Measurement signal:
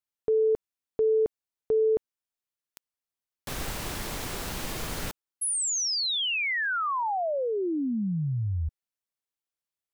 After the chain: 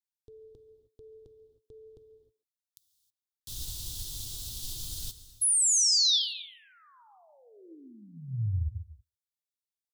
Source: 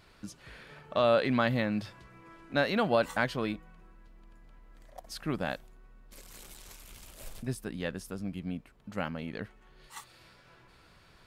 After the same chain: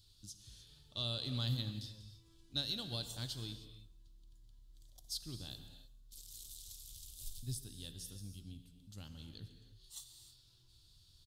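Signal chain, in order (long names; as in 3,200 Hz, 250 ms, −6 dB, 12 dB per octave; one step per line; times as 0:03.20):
drawn EQ curve 110 Hz 0 dB, 180 Hz −16 dB, 330 Hz −14 dB, 540 Hz −25 dB, 910 Hz −23 dB, 2,200 Hz −26 dB, 3,500 Hz +3 dB
far-end echo of a speakerphone 140 ms, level −18 dB
reverb whose tail is shaped and stops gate 340 ms flat, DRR 7.5 dB
expander for the loud parts 1.5 to 1, over −42 dBFS
level +1 dB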